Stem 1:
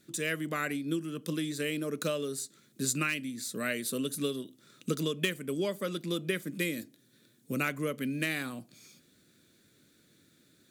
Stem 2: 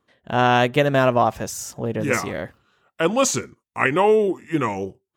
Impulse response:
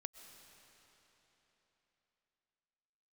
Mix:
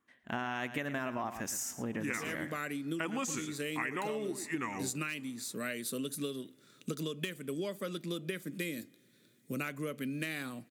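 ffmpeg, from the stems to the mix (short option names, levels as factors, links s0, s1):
-filter_complex "[0:a]adelay=2000,volume=0.668,asplit=2[s0][s1];[s1]volume=0.119[s2];[1:a]bass=f=250:g=-7,treble=f=4000:g=6,alimiter=limit=0.376:level=0:latency=1:release=28,equalizer=f=250:t=o:w=1:g=8,equalizer=f=500:t=o:w=1:g=-8,equalizer=f=2000:t=o:w=1:g=8,equalizer=f=4000:t=o:w=1:g=-7,volume=0.355,asplit=3[s3][s4][s5];[s4]volume=0.168[s6];[s5]volume=0.237[s7];[2:a]atrim=start_sample=2205[s8];[s2][s6]amix=inputs=2:normalize=0[s9];[s9][s8]afir=irnorm=-1:irlink=0[s10];[s7]aecho=0:1:112:1[s11];[s0][s3][s10][s11]amix=inputs=4:normalize=0,acompressor=threshold=0.0251:ratio=12"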